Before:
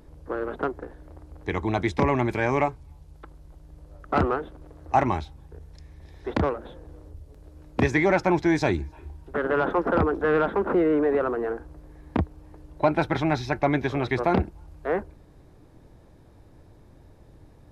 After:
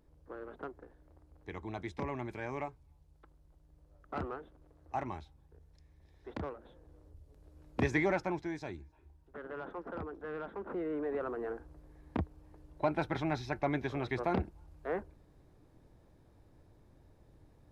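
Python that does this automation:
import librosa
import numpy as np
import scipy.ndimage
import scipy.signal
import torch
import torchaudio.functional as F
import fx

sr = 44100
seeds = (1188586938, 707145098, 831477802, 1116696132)

y = fx.gain(x, sr, db=fx.line((6.56, -16.0), (7.99, -8.0), (8.61, -19.5), (10.37, -19.5), (11.5, -10.0)))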